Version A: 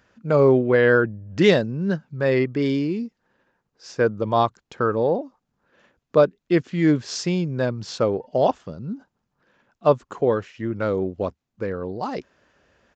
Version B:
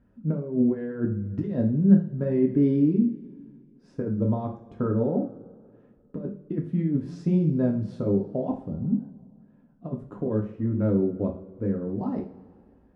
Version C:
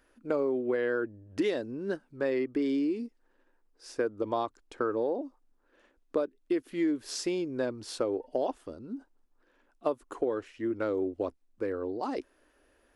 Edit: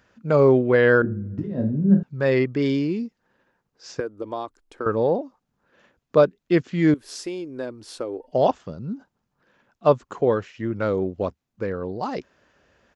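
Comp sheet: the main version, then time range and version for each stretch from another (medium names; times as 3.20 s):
A
1.02–2.03 s: from B
4.00–4.86 s: from C
6.94–8.32 s: from C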